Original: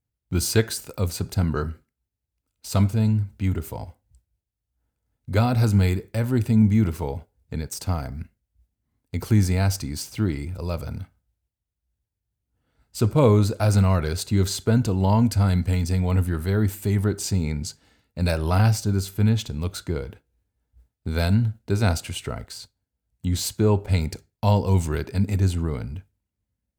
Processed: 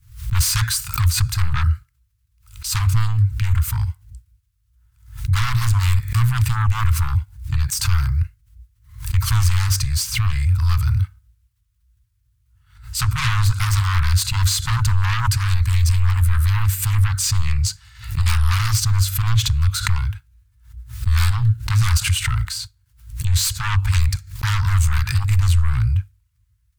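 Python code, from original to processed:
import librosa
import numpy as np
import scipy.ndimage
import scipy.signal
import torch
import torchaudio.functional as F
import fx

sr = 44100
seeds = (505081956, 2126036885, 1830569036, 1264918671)

p1 = fx.fold_sine(x, sr, drive_db=18, ceiling_db=-6.0)
p2 = x + F.gain(torch.from_numpy(p1), -6.5).numpy()
p3 = scipy.signal.sosfilt(scipy.signal.ellip(3, 1.0, 40, [120.0, 1100.0], 'bandstop', fs=sr, output='sos'), p2)
p4 = fx.low_shelf(p3, sr, hz=140.0, db=9.0)
p5 = fx.pre_swell(p4, sr, db_per_s=120.0)
y = F.gain(torch.from_numpy(p5), -5.5).numpy()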